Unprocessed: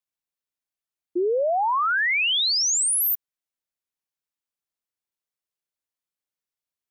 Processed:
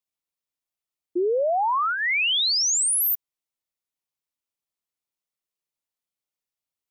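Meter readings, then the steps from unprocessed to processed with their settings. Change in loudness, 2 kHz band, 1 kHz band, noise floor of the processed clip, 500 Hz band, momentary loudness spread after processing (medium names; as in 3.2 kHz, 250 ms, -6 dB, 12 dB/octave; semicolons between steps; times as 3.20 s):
-0.5 dB, -2.0 dB, -0.5 dB, under -85 dBFS, 0.0 dB, 8 LU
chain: peaking EQ 1.6 kHz -6.5 dB 0.25 oct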